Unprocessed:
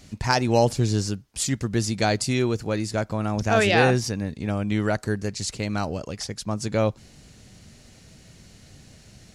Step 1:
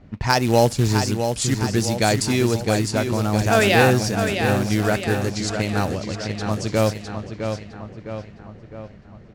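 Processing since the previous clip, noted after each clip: short-mantissa float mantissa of 2-bit; feedback delay 659 ms, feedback 54%, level -7 dB; level-controlled noise filter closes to 1.2 kHz, open at -20 dBFS; trim +3 dB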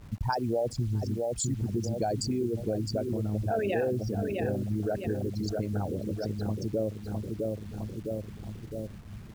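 resonances exaggerated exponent 3; compression 3:1, threshold -30 dBFS, peak gain reduction 14 dB; bit crusher 9-bit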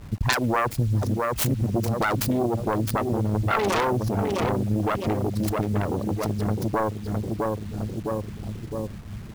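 self-modulated delay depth 0.86 ms; trim +7 dB

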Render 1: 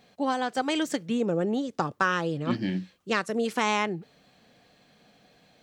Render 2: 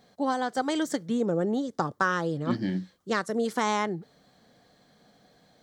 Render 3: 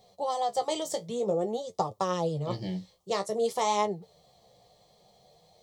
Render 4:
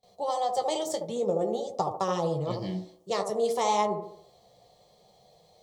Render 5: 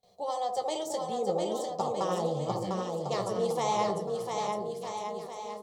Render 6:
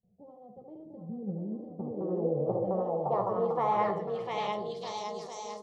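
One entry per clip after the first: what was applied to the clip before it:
peaking EQ 2.6 kHz -13.5 dB 0.38 oct
flange 0.52 Hz, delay 9.2 ms, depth 9.2 ms, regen +39%; static phaser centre 640 Hz, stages 4; trim +6.5 dB
feedback echo behind a band-pass 73 ms, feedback 44%, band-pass 500 Hz, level -4 dB; gate with hold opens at -53 dBFS
bouncing-ball echo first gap 700 ms, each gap 0.8×, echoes 5; trim -3.5 dB
low-pass sweep 200 Hz -> 6.1 kHz, 1.50–5.27 s; trim -1.5 dB

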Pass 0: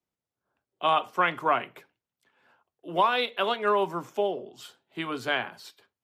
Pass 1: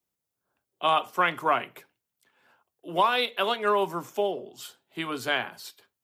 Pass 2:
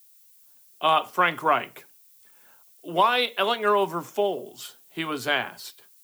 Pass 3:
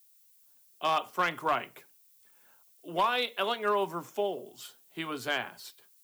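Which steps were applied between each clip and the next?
treble shelf 6.7 kHz +11.5 dB
added noise violet -58 dBFS; trim +2.5 dB
hard clipper -13 dBFS, distortion -20 dB; trim -6.5 dB

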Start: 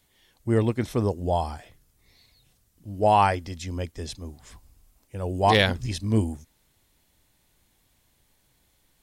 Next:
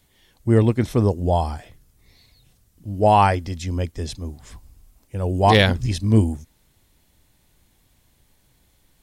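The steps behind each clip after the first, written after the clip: bass shelf 310 Hz +5 dB; trim +3 dB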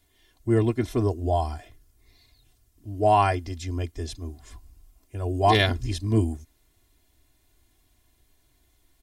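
comb 2.9 ms, depth 78%; trim -6.5 dB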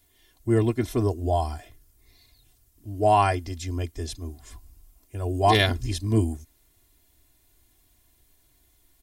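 treble shelf 9 kHz +9 dB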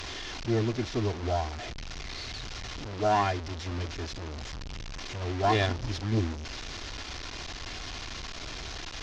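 one-bit delta coder 32 kbps, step -26.5 dBFS; valve stage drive 13 dB, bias 0.55; trim -2.5 dB

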